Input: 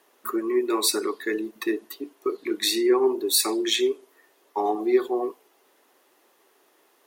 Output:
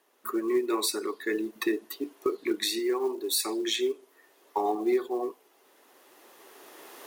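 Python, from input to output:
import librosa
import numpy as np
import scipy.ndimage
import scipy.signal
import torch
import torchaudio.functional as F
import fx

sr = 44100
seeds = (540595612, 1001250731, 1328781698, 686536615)

y = fx.recorder_agc(x, sr, target_db=-11.0, rise_db_per_s=11.0, max_gain_db=30)
y = fx.quant_float(y, sr, bits=4)
y = fx.low_shelf(y, sr, hz=220.0, db=-9.0, at=(2.79, 3.32))
y = F.gain(torch.from_numpy(y), -7.0).numpy()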